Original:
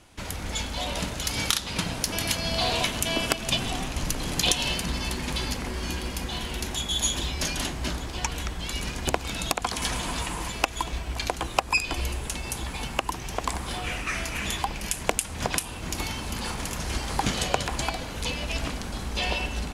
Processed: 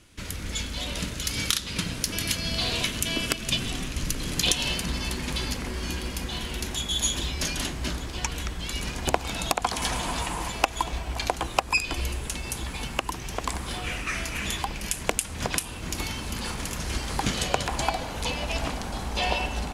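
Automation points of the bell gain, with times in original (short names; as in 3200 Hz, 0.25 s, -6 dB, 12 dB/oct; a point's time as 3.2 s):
bell 790 Hz 0.9 oct
4.14 s -11 dB
4.68 s -3.5 dB
8.71 s -3.5 dB
9.15 s +4 dB
11.25 s +4 dB
11.85 s -3 dB
17.42 s -3 dB
17.84 s +6 dB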